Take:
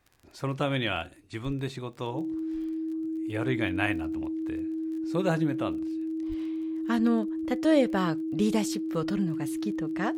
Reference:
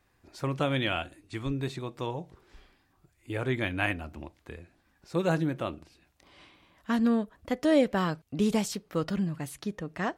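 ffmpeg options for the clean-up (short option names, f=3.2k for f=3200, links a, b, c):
-filter_complex "[0:a]adeclick=t=4,bandreject=f=320:w=30,asplit=3[a][b][c];[a]afade=t=out:st=6.28:d=0.02[d];[b]highpass=f=140:w=0.5412,highpass=f=140:w=1.3066,afade=t=in:st=6.28:d=0.02,afade=t=out:st=6.4:d=0.02[e];[c]afade=t=in:st=6.4:d=0.02[f];[d][e][f]amix=inputs=3:normalize=0"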